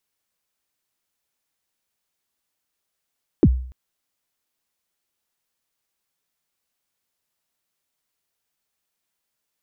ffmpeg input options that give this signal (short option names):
-f lavfi -i "aevalsrc='0.447*pow(10,-3*t/0.54)*sin(2*PI*(410*0.052/log(63/410)*(exp(log(63/410)*min(t,0.052)/0.052)-1)+63*max(t-0.052,0)))':d=0.29:s=44100"